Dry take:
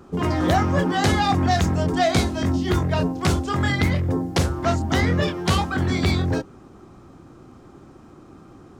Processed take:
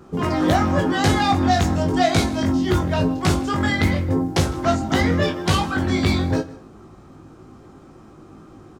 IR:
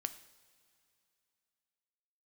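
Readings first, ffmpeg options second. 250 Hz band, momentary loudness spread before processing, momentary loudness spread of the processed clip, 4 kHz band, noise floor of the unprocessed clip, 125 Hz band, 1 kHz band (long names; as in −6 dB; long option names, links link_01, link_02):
+2.5 dB, 4 LU, 3 LU, +1.5 dB, −47 dBFS, 0.0 dB, +1.5 dB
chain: -filter_complex "[0:a]aecho=1:1:158:0.0891,asplit=2[link_01][link_02];[1:a]atrim=start_sample=2205,afade=type=out:start_time=0.32:duration=0.01,atrim=end_sample=14553,adelay=19[link_03];[link_02][link_03]afir=irnorm=-1:irlink=0,volume=-3dB[link_04];[link_01][link_04]amix=inputs=2:normalize=0"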